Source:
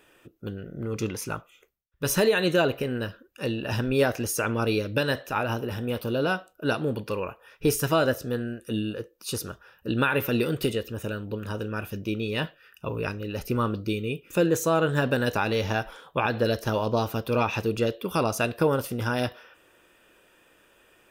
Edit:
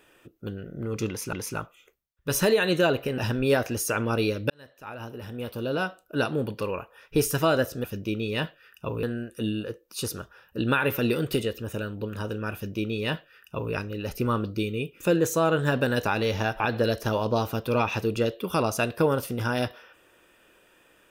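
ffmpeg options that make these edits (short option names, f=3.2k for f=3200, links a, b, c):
-filter_complex "[0:a]asplit=7[a][b][c][d][e][f][g];[a]atrim=end=1.332[h];[b]atrim=start=1.078:end=2.932[i];[c]atrim=start=3.668:end=4.99,asetpts=PTS-STARTPTS,afade=t=out:st=1.318:d=0.004:c=hsin[j];[d]atrim=start=4.99:end=8.332,asetpts=PTS-STARTPTS,afade=t=in:d=1.65[k];[e]atrim=start=11.838:end=13.032[l];[f]atrim=start=8.328:end=15.902[m];[g]atrim=start=16.208[n];[h][i]acrossfade=d=0.004:c1=hsin:c2=hsin[o];[j][k]concat=n=2:v=0:a=1[p];[o][p]acrossfade=d=0.004:c1=hsin:c2=hsin[q];[q][l]acrossfade=d=0.004:c1=hsin:c2=hsin[r];[r][m]acrossfade=d=0.004:c1=hsin:c2=hsin[s];[s][n]acrossfade=d=0.004:c1=hsin:c2=hsin"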